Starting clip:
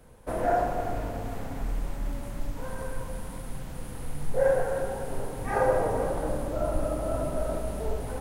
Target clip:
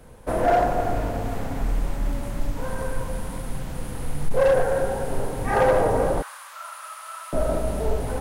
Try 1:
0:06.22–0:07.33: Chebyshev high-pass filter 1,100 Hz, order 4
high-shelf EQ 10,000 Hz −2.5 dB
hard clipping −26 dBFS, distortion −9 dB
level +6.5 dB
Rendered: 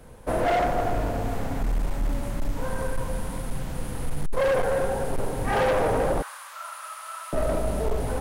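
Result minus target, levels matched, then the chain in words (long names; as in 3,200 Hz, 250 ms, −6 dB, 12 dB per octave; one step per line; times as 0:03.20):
hard clipping: distortion +9 dB
0:06.22–0:07.33: Chebyshev high-pass filter 1,100 Hz, order 4
high-shelf EQ 10,000 Hz −2.5 dB
hard clipping −19.5 dBFS, distortion −18 dB
level +6.5 dB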